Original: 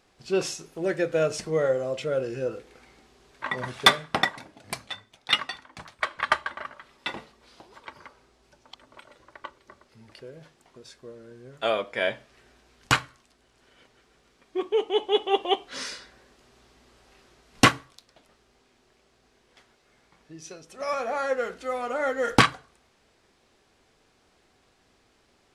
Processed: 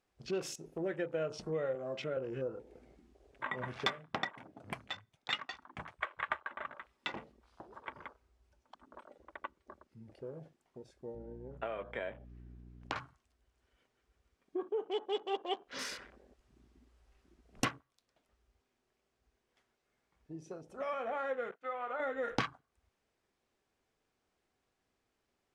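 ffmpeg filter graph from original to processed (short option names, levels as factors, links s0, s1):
-filter_complex "[0:a]asettb=1/sr,asplit=3[s0][s1][s2];[s0]atrim=end=1.754[s3];[s1]atrim=start=1.75:end=2.17,asetpts=PTS-STARTPTS,afade=t=in:d=0.004:c=qsin,afade=t=out:st=0.416:d=0.004:c=qsin,highpass=130,bandreject=f=490:w=5.1[s4];[s2]atrim=start=2.166[s5];[s3][s4]acrossfade=d=0.004:c1=hsin:c2=qsin[s6];[s6][s5]acrossfade=d=0.004:c1=qsin:c2=hsin,asettb=1/sr,asplit=3[s7][s8][s9];[s7]atrim=end=11.154[s10];[s8]atrim=start=11.15:end=12.96,asetpts=PTS-STARTPTS,afade=t=in:d=0.004:c=qsin,afade=t=out:st=1.806:d=0.004:c=qsin,highshelf=f=3800:g=-9,acrossover=split=220|1300[s11][s12][s13];[s11]acompressor=threshold=0.00158:ratio=4[s14];[s12]acompressor=threshold=0.0282:ratio=4[s15];[s13]acompressor=threshold=0.0112:ratio=4[s16];[s14][s15][s16]amix=inputs=3:normalize=0,aeval=exprs='val(0)+0.00282*(sin(2*PI*60*n/s)+sin(2*PI*2*60*n/s)/2+sin(2*PI*3*60*n/s)/3+sin(2*PI*4*60*n/s)/4+sin(2*PI*5*60*n/s)/5)':c=same[s17];[s9]atrim=start=12.956[s18];[s10][s17]acrossfade=d=0.004:c1=hsin:c2=qsin[s19];[s19][s18]acrossfade=d=0.004:c1=qsin:c2=hsin,asettb=1/sr,asplit=3[s20][s21][s22];[s20]atrim=end=21.514[s23];[s21]atrim=start=21.51:end=22,asetpts=PTS-STARTPTS,afade=t=in:d=0.004:c=qsin,afade=t=out:st=0.486:d=0.004:c=qsin,bandpass=f=1300:t=q:w=0.82,agate=range=0.0224:threshold=0.00398:ratio=3:release=100:detection=peak[s24];[s22]atrim=start=21.996[s25];[s23][s24]acrossfade=d=0.004:c1=hsin:c2=qsin[s26];[s26][s25]acrossfade=d=0.004:c1=qsin:c2=hsin,equalizer=f=4200:t=o:w=0.72:g=-3.5,acompressor=threshold=0.0141:ratio=2.5,afwtdn=0.00355,volume=0.891"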